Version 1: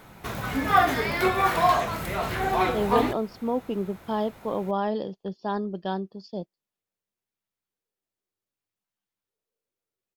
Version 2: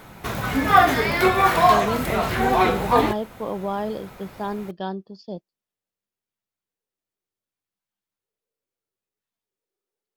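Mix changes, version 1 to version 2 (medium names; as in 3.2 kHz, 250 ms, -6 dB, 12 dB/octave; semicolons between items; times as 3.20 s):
speech: entry -1.05 s; background +5.0 dB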